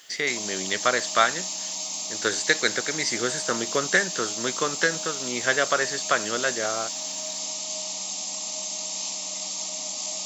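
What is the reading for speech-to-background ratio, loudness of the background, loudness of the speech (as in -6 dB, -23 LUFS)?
3.5 dB, -29.0 LUFS, -25.5 LUFS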